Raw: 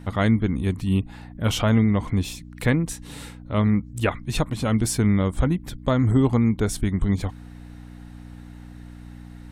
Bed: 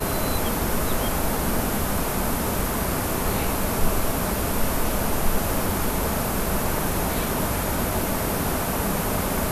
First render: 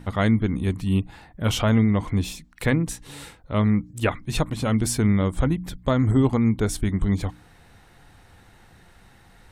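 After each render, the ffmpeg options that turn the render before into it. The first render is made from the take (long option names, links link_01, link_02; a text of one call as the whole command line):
ffmpeg -i in.wav -af "bandreject=frequency=60:width_type=h:width=4,bandreject=frequency=120:width_type=h:width=4,bandreject=frequency=180:width_type=h:width=4,bandreject=frequency=240:width_type=h:width=4,bandreject=frequency=300:width_type=h:width=4" out.wav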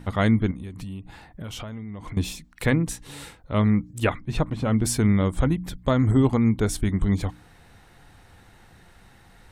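ffmpeg -i in.wav -filter_complex "[0:a]asettb=1/sr,asplit=3[link_01][link_02][link_03];[link_01]atrim=end=0.514[link_04];[link_02]atrim=start=0.51:end=2.17,asetpts=PTS-STARTPTS,afade=type=in:duration=0.004:curve=qsin,afade=type=out:start_time=1.656:duration=0.004:curve=qsin,acompressor=threshold=-31dB:ratio=16:attack=3.2:release=140:knee=1:detection=peak[link_05];[link_03]atrim=start=2.166[link_06];[link_04][link_05]acrossfade=duration=0.004:curve1=hsin:curve2=qsin[link_07];[link_07][link_06]acrossfade=duration=0.004:curve1=qsin:curve2=hsin,asplit=3[link_08][link_09][link_10];[link_08]afade=type=out:start_time=4.2:duration=0.02[link_11];[link_09]lowpass=frequency=1800:poles=1,afade=type=in:start_time=4.2:duration=0.02,afade=type=out:start_time=4.84:duration=0.02[link_12];[link_10]afade=type=in:start_time=4.84:duration=0.02[link_13];[link_11][link_12][link_13]amix=inputs=3:normalize=0" out.wav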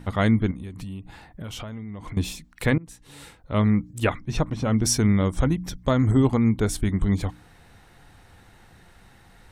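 ffmpeg -i in.wav -filter_complex "[0:a]asettb=1/sr,asplit=3[link_01][link_02][link_03];[link_01]atrim=end=4.094[link_04];[link_02]atrim=start=4.09:end=6.24,asetpts=PTS-STARTPTS,afade=type=in:duration=0.004:curve=qsin,afade=type=out:start_time=2.146:duration=0.004:curve=qsin,equalizer=frequency=5700:width=5.4:gain=12.5[link_05];[link_03]atrim=start=6.236[link_06];[link_04][link_05]acrossfade=duration=0.004:curve1=hsin:curve2=qsin[link_07];[link_07][link_06]acrossfade=duration=0.004:curve1=qsin:curve2=hsin,asplit=2[link_08][link_09];[link_08]atrim=end=2.78,asetpts=PTS-STARTPTS,afade=type=out:start_time=2.776:duration=0.004:curve=hsin:silence=0.0707946[link_10];[link_09]atrim=start=2.78,asetpts=PTS-STARTPTS,afade=type=in:duration=0.75:silence=0.0707946[link_11];[link_10][link_11]concat=n=2:v=0:a=1" out.wav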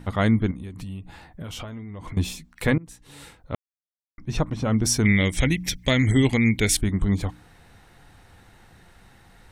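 ffmpeg -i in.wav -filter_complex "[0:a]asettb=1/sr,asplit=3[link_01][link_02][link_03];[link_01]atrim=end=0.854[link_04];[link_02]atrim=start=0.85:end=2.72,asetpts=PTS-STARTPTS,afade=type=in:duration=0.004:curve=qsin,afade=type=out:start_time=1.866:duration=0.004:curve=qsin,asplit=2[link_05][link_06];[link_06]adelay=12,volume=-9dB[link_07];[link_05][link_07]amix=inputs=2:normalize=0,atrim=end_sample=82467[link_08];[link_03]atrim=start=2.716[link_09];[link_04][link_08]acrossfade=duration=0.004:curve1=hsin:curve2=qsin[link_10];[link_10][link_09]acrossfade=duration=0.004:curve1=qsin:curve2=hsin,asettb=1/sr,asplit=3[link_11][link_12][link_13];[link_11]atrim=end=5.054[link_14];[link_12]atrim=start=5.05:end=6.77,asetpts=PTS-STARTPTS,afade=type=in:duration=0.004:curve=qsin,afade=type=out:start_time=1.716:duration=0.004:curve=qsin,highshelf=frequency=1600:width_type=q:width=3:gain=9.5[link_15];[link_13]atrim=start=6.766[link_16];[link_14][link_15]acrossfade=duration=0.004:curve1=hsin:curve2=qsin[link_17];[link_17][link_16]acrossfade=duration=0.004:curve1=qsin:curve2=hsin,asplit=3[link_18][link_19][link_20];[link_18]atrim=end=3.55,asetpts=PTS-STARTPTS,afade=type=out:start_time=3.546:duration=0.004:curve=hsin[link_21];[link_19]atrim=start=3.55:end=4.18,asetpts=PTS-STARTPTS,volume=0[link_22];[link_20]atrim=start=4.18,asetpts=PTS-STARTPTS,afade=type=in:duration=0.004:curve=hsin[link_23];[link_21][link_22][link_23]concat=n=3:v=0:a=1" out.wav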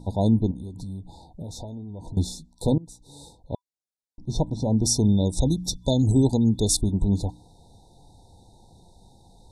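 ffmpeg -i in.wav -af "afftfilt=real='re*(1-between(b*sr/4096,990,3500))':imag='im*(1-between(b*sr/4096,990,3500))':win_size=4096:overlap=0.75,lowpass=frequency=11000:width=0.5412,lowpass=frequency=11000:width=1.3066" out.wav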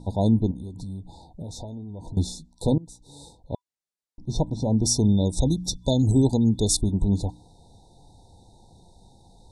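ffmpeg -i in.wav -af "lowpass=frequency=11000:width=0.5412,lowpass=frequency=11000:width=1.3066" out.wav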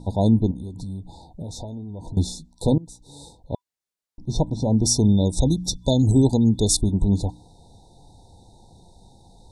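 ffmpeg -i in.wav -af "volume=2.5dB" out.wav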